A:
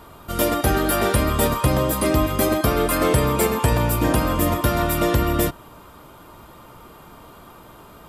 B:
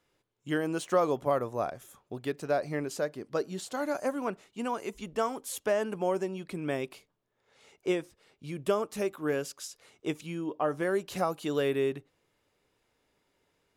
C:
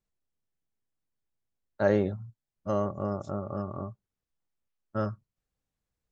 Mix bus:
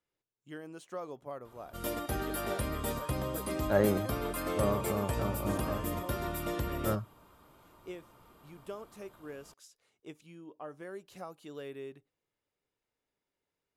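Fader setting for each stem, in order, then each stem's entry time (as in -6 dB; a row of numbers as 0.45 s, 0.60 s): -15.5 dB, -15.0 dB, -2.5 dB; 1.45 s, 0.00 s, 1.90 s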